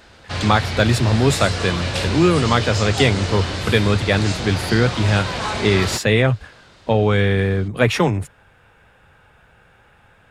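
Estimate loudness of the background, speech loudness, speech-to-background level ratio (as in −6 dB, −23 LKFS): −24.5 LKFS, −19.0 LKFS, 5.5 dB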